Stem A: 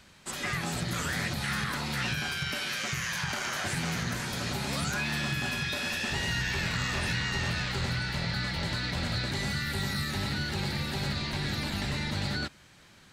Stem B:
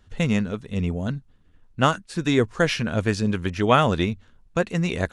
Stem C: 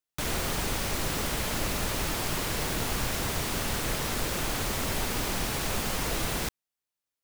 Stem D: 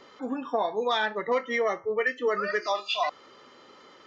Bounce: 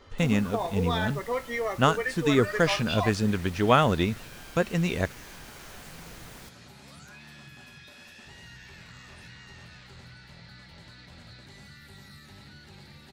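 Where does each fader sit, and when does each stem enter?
−17.5, −2.5, −17.0, −4.0 decibels; 2.15, 0.00, 0.00, 0.00 seconds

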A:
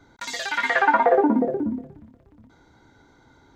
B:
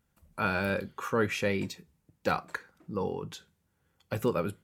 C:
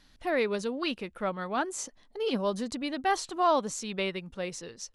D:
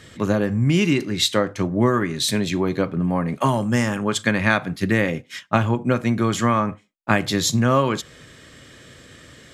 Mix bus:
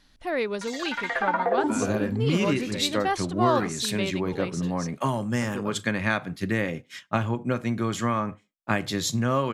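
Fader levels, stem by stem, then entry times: −7.0, −8.0, +0.5, −6.5 decibels; 0.40, 1.30, 0.00, 1.60 seconds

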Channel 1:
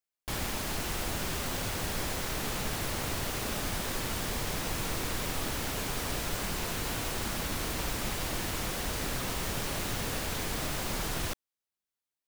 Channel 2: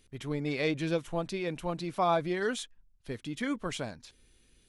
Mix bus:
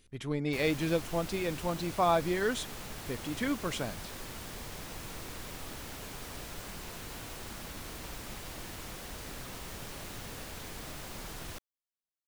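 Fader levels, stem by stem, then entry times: −9.5, +0.5 decibels; 0.25, 0.00 seconds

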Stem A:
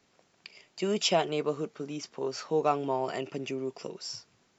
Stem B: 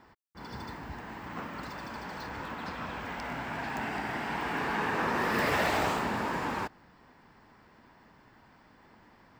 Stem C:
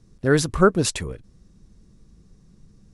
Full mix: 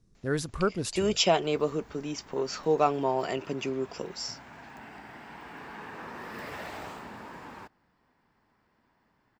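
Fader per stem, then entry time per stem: +2.5, −12.0, −11.0 decibels; 0.15, 1.00, 0.00 seconds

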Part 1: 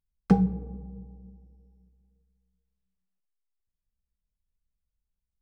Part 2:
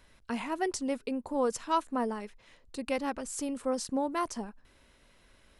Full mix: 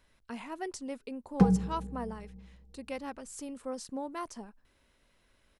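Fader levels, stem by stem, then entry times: −2.0, −7.0 decibels; 1.10, 0.00 seconds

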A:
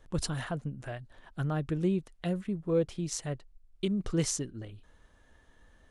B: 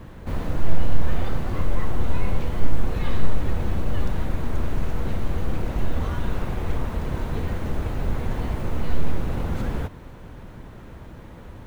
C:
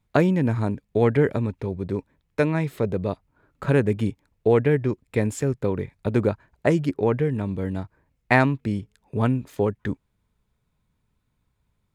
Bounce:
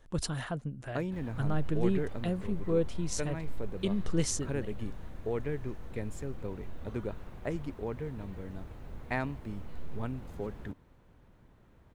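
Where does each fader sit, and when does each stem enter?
−1.0, −19.5, −15.5 decibels; 0.00, 0.85, 0.80 seconds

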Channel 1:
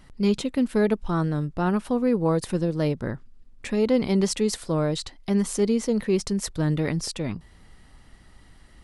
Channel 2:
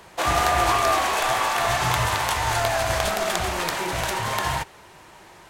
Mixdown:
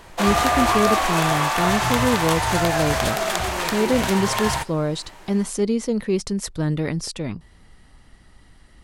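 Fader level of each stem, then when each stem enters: +1.0, +1.0 decibels; 0.00, 0.00 seconds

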